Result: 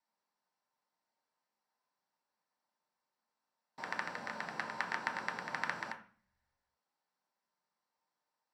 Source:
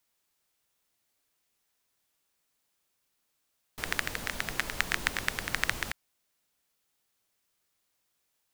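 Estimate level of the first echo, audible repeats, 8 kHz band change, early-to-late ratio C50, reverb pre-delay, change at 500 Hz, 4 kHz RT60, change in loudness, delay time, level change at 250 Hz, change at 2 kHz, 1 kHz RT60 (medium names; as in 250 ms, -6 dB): no echo, no echo, -18.0 dB, 10.5 dB, 3 ms, -4.5 dB, 0.40 s, -7.5 dB, no echo, -6.0 dB, -7.0 dB, 0.45 s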